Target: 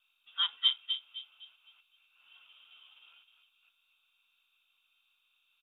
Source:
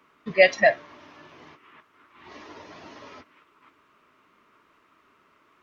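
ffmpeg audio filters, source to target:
-filter_complex "[0:a]highpass=230,aeval=exprs='val(0)+0.00708*(sin(2*PI*50*n/s)+sin(2*PI*2*50*n/s)/2+sin(2*PI*3*50*n/s)/3+sin(2*PI*4*50*n/s)/4+sin(2*PI*5*50*n/s)/5)':c=same,asplit=3[a][b][c];[a]bandpass=f=730:t=q:w=8,volume=0dB[d];[b]bandpass=f=1.09k:t=q:w=8,volume=-6dB[e];[c]bandpass=f=2.44k:t=q:w=8,volume=-9dB[f];[d][e][f]amix=inputs=3:normalize=0,asplit=2[g][h];[h]adelay=256,lowpass=f=1k:p=1,volume=-6dB,asplit=2[i][j];[j]adelay=256,lowpass=f=1k:p=1,volume=0.39,asplit=2[k][l];[l]adelay=256,lowpass=f=1k:p=1,volume=0.39,asplit=2[m][n];[n]adelay=256,lowpass=f=1k:p=1,volume=0.39,asplit=2[o][p];[p]adelay=256,lowpass=f=1k:p=1,volume=0.39[q];[i][k][m][o][q]amix=inputs=5:normalize=0[r];[g][r]amix=inputs=2:normalize=0,lowpass=f=3.2k:t=q:w=0.5098,lowpass=f=3.2k:t=q:w=0.6013,lowpass=f=3.2k:t=q:w=0.9,lowpass=f=3.2k:t=q:w=2.563,afreqshift=-3800,volume=-4.5dB" -ar 48000 -c:a mp2 -b:a 64k

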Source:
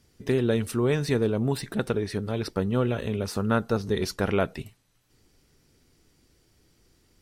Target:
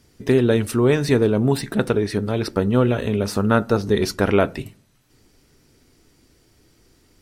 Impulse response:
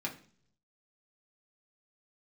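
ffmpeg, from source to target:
-filter_complex "[0:a]asplit=2[a][b];[1:a]atrim=start_sample=2205,asetrate=48510,aresample=44100,lowpass=2.4k[c];[b][c]afir=irnorm=-1:irlink=0,volume=-13.5dB[d];[a][d]amix=inputs=2:normalize=0,volume=6dB"

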